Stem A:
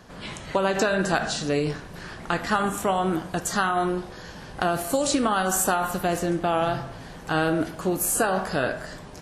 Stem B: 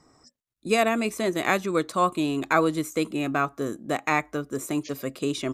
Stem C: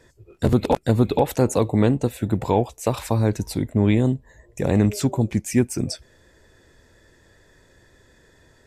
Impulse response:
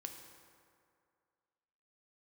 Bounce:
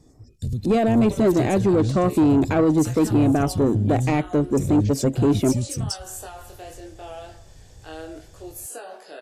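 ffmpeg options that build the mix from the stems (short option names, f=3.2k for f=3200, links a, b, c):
-filter_complex "[0:a]highpass=f=350:w=0.5412,highpass=f=350:w=1.3066,flanger=delay=19.5:depth=5.8:speed=0.75,adelay=550,volume=-17dB[a];[1:a]tiltshelf=f=1.2k:g=8,volume=-1.5dB[b];[2:a]aecho=1:1:1.7:0.44,acompressor=threshold=-34dB:ratio=2,firequalizer=gain_entry='entry(110,0);entry(620,-25);entry(5300,1)':delay=0.05:min_phase=1,volume=0.5dB[c];[b][c]amix=inputs=2:normalize=0,highshelf=f=8.3k:g=-7,alimiter=limit=-14dB:level=0:latency=1:release=12,volume=0dB[d];[a][d]amix=inputs=2:normalize=0,equalizer=f=1.2k:t=o:w=1.1:g=-10,dynaudnorm=f=160:g=7:m=9dB,asoftclip=type=tanh:threshold=-12dB"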